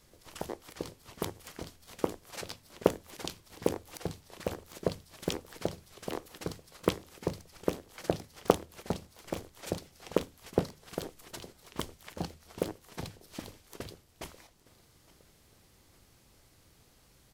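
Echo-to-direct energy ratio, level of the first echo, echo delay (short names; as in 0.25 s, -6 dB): -21.5 dB, -23.0 dB, 0.863 s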